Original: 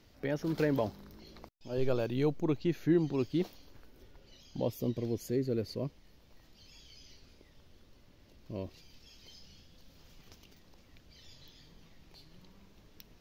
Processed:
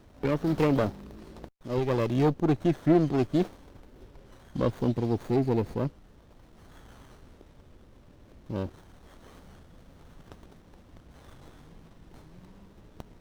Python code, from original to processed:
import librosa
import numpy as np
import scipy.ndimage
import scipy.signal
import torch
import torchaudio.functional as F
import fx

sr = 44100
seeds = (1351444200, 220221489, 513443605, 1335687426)

y = fx.diode_clip(x, sr, knee_db=-21.0)
y = fx.running_max(y, sr, window=17)
y = F.gain(torch.from_numpy(y), 8.0).numpy()